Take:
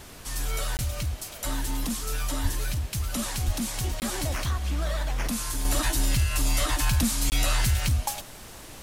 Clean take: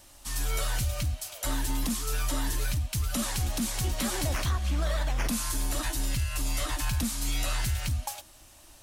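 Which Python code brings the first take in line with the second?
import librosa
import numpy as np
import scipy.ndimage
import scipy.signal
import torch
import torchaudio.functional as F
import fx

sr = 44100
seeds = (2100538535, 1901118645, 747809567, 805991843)

y = fx.highpass(x, sr, hz=140.0, slope=24, at=(2.42, 2.54), fade=0.02)
y = fx.highpass(y, sr, hz=140.0, slope=24, at=(3.46, 3.58), fade=0.02)
y = fx.fix_interpolate(y, sr, at_s=(0.77, 4.0, 7.3), length_ms=19.0)
y = fx.noise_reduce(y, sr, print_start_s=8.22, print_end_s=8.72, reduce_db=6.0)
y = fx.gain(y, sr, db=fx.steps((0.0, 0.0), (5.65, -5.5)))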